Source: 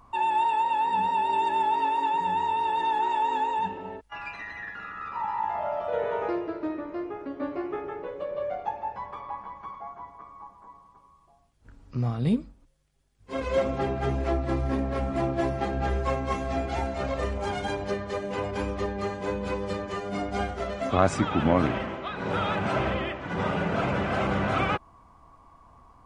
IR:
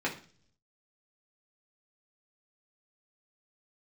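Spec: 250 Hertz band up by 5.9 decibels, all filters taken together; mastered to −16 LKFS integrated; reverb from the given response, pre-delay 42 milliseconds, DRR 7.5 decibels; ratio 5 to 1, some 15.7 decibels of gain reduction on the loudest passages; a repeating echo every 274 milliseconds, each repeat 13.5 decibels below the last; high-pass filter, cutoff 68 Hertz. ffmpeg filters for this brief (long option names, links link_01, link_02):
-filter_complex "[0:a]highpass=68,equalizer=frequency=250:width_type=o:gain=7.5,acompressor=threshold=-32dB:ratio=5,aecho=1:1:274|548:0.211|0.0444,asplit=2[link_01][link_02];[1:a]atrim=start_sample=2205,adelay=42[link_03];[link_02][link_03]afir=irnorm=-1:irlink=0,volume=-15.5dB[link_04];[link_01][link_04]amix=inputs=2:normalize=0,volume=18.5dB"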